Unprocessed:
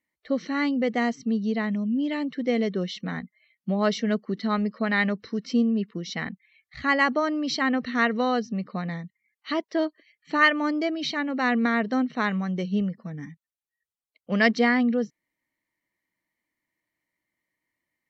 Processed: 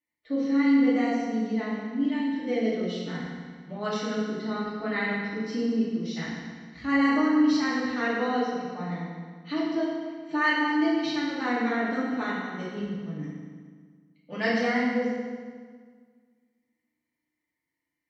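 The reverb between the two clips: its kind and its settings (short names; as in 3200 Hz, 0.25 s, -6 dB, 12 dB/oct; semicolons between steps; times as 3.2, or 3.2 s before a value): FDN reverb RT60 1.7 s, low-frequency decay 1.2×, high-frequency decay 0.85×, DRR -9 dB; gain -12.5 dB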